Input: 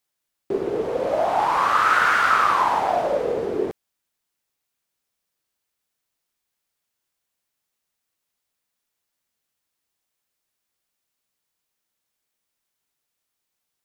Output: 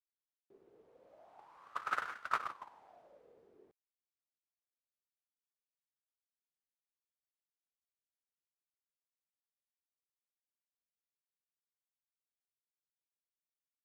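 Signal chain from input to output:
noise gate −12 dBFS, range −53 dB
level +12.5 dB

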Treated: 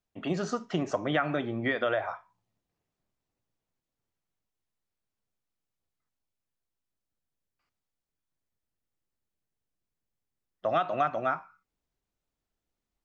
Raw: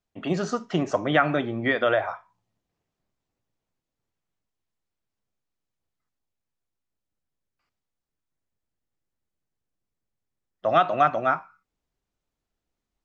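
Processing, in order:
downward compressor 2 to 1, threshold −23 dBFS, peak gain reduction 6 dB
level −3 dB

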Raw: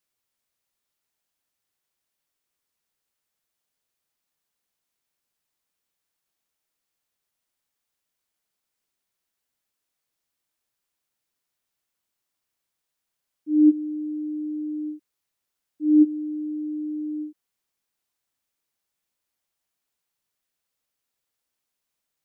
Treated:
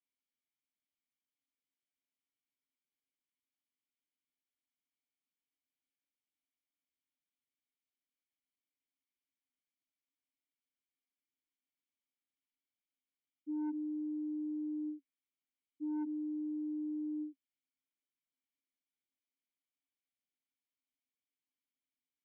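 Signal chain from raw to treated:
formant filter i
soft clipping −21.5 dBFS, distortion −12 dB
brickwall limiter −32 dBFS, peak gain reduction 10 dB
level −2 dB

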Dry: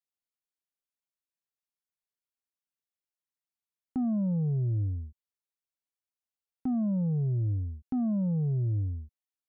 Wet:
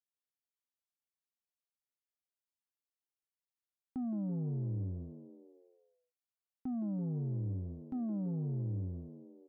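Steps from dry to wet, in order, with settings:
echo with shifted repeats 166 ms, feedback 55%, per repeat +69 Hz, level −12 dB
level −8.5 dB

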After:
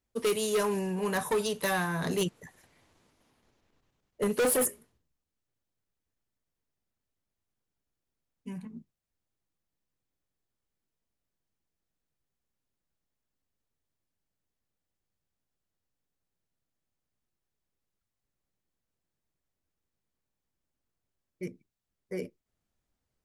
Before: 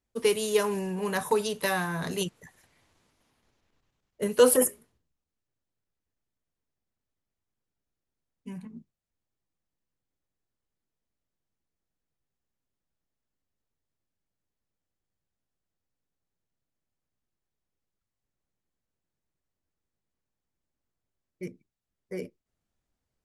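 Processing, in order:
0:02.04–0:04.47: parametric band 350 Hz +3.5 dB 2.8 octaves
gain into a clipping stage and back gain 23 dB

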